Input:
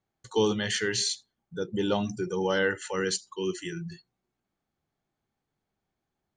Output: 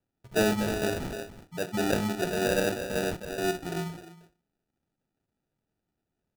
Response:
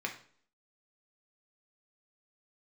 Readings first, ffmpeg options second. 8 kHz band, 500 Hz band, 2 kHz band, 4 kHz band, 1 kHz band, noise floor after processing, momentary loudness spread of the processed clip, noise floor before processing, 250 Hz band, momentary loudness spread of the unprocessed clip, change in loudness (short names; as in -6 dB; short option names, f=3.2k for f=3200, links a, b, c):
-4.0 dB, 0.0 dB, -1.0 dB, -5.0 dB, +1.5 dB, -84 dBFS, 11 LU, -85 dBFS, +1.5 dB, 11 LU, -0.5 dB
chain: -filter_complex "[0:a]lowpass=f=2.5k:p=1,asplit=2[a][b];[b]adelay=310,highpass=300,lowpass=3.4k,asoftclip=type=hard:threshold=-21.5dB,volume=-7dB[c];[a][c]amix=inputs=2:normalize=0,asplit=2[d][e];[1:a]atrim=start_sample=2205,lowshelf=f=330:g=6.5,adelay=24[f];[e][f]afir=irnorm=-1:irlink=0,volume=-15dB[g];[d][g]amix=inputs=2:normalize=0,acrusher=samples=41:mix=1:aa=0.000001"